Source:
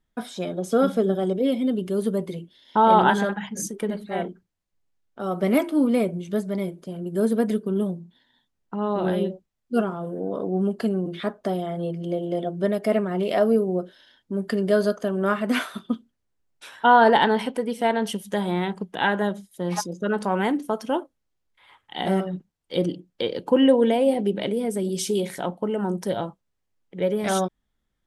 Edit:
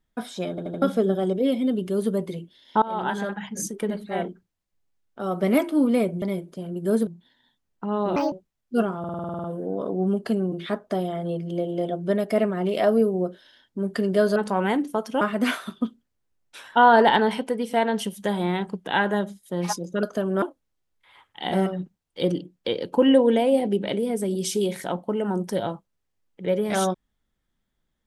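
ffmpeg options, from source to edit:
-filter_complex "[0:a]asplit=23[a][b][c][d][e][f][g][h][i][j][k][l][m][n][o][p][q][r][s][t][u][v][w];[a]atrim=end=0.582[x];[b]atrim=start=0.498:end=0.582[y];[c]atrim=start=0.498:end=0.582[z];[d]atrim=start=0.498:end=0.582[aa];[e]atrim=start=0.818:end=2.82,asetpts=PTS-STARTPTS,afade=t=out:st=1.998:d=0.004:c=hsin:silence=0.0794328[ab];[f]atrim=start=2.82:end=6.222,asetpts=PTS-STARTPTS,afade=t=in:d=0.79:silence=0.0794328[ac];[g]atrim=start=6.518:end=7.372[ad];[h]atrim=start=7.968:end=9.064[ae];[i]atrim=start=9.06:end=9.31,asetpts=PTS-STARTPTS,asetrate=68796,aresample=44100,atrim=end_sample=7067,asetpts=PTS-STARTPTS[af];[j]atrim=start=9.306:end=10.032[ag];[k]atrim=start=9.978:end=10.032[ah];[l]atrim=start=9.978:end=10.032[ai];[m]atrim=start=9.978:end=10.032[aj];[n]atrim=start=9.978:end=10.032[ak];[o]atrim=start=9.978:end=10.032[al];[p]atrim=start=9.978:end=10.032[am];[q]atrim=start=9.978:end=10.032[an];[r]atrim=start=9.978:end=10.032[ao];[s]atrim=start=9.978:end=14.902[ap];[t]atrim=start=20.108:end=20.962[aq];[u]atrim=start=15.288:end=20.112[ar];[v]atrim=start=14.898:end=15.292[as];[w]atrim=start=20.958[at];[x][y]acrossfade=d=0.004:c1=hsin:c2=hsin[au];[au][z]acrossfade=d=0.004:c1=hsin:c2=hsin[av];[av][aa]acrossfade=d=0.004:c1=hsin:c2=hsin[aw];[ab][ac]concat=n=2:v=0:a=1[ax];[aw][ax]acrossfade=d=0.004:c1=hsin:c2=hsin[ay];[ay][ad]acrossfade=d=0.004:c1=hsin:c2=hsin[az];[az][ae]acrossfade=d=0.004:c1=hsin:c2=hsin[ba];[ba][af]acrossfade=d=0.004:c1=hsin:c2=hsin[bb];[bb][ag]acrossfade=d=0.004:c1=hsin:c2=hsin[bc];[bc][ah]acrossfade=d=0.004:c1=hsin:c2=hsin[bd];[bd][ai]acrossfade=d=0.004:c1=hsin:c2=hsin[be];[be][aj]acrossfade=d=0.004:c1=hsin:c2=hsin[bf];[bf][ak]acrossfade=d=0.004:c1=hsin:c2=hsin[bg];[bg][al]acrossfade=d=0.004:c1=hsin:c2=hsin[bh];[bh][am]acrossfade=d=0.004:c1=hsin:c2=hsin[bi];[bi][an]acrossfade=d=0.004:c1=hsin:c2=hsin[bj];[bj][ao]acrossfade=d=0.004:c1=hsin:c2=hsin[bk];[bk][ap]acrossfade=d=0.004:c1=hsin:c2=hsin[bl];[bl][aq]acrossfade=d=0.004:c1=hsin:c2=hsin[bm];[bm][ar]acrossfade=d=0.004:c1=hsin:c2=hsin[bn];[bn][as]acrossfade=d=0.004:c1=hsin:c2=hsin[bo];[bo][at]acrossfade=d=0.004:c1=hsin:c2=hsin"

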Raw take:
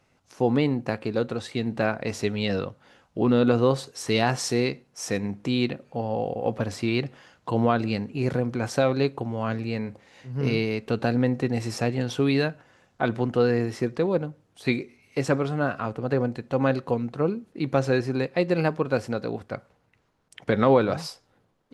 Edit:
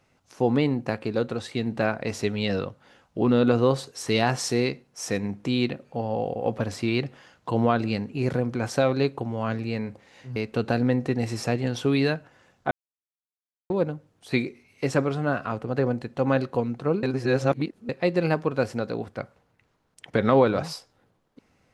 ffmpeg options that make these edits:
-filter_complex "[0:a]asplit=6[a][b][c][d][e][f];[a]atrim=end=10.362[g];[b]atrim=start=10.698:end=13.05,asetpts=PTS-STARTPTS,afade=t=out:st=2.348:d=0.004:c=hsin[h];[c]atrim=start=13.05:end=14.04,asetpts=PTS-STARTPTS,volume=0[i];[d]atrim=start=14.04:end=17.372,asetpts=PTS-STARTPTS,afade=t=in:d=0.004:c=hsin[j];[e]atrim=start=17.368:end=18.232,asetpts=PTS-STARTPTS,areverse[k];[f]atrim=start=18.228[l];[h][i][j]concat=n=3:v=0:a=1[m];[g][m]acrossfade=d=0.004:c1=hsin:c2=hsin[n];[n][k]acrossfade=d=0.004:c1=hsin:c2=hsin[o];[o][l]acrossfade=d=0.004:c1=hsin:c2=hsin"

